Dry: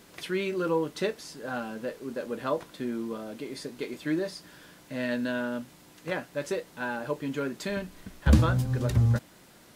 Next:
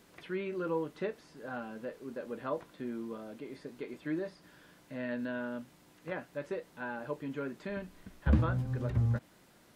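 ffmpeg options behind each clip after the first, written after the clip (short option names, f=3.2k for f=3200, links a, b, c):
-filter_complex "[0:a]acrossover=split=2700[a][b];[b]acompressor=threshold=-58dB:ratio=4:attack=1:release=60[c];[a][c]amix=inputs=2:normalize=0,volume=-6.5dB"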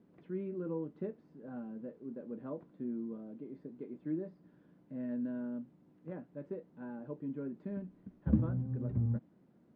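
-af "bandpass=f=210:t=q:w=1.3:csg=0,volume=2dB"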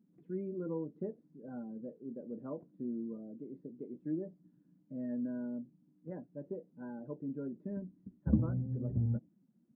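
-af "afftdn=nr=18:nf=-52"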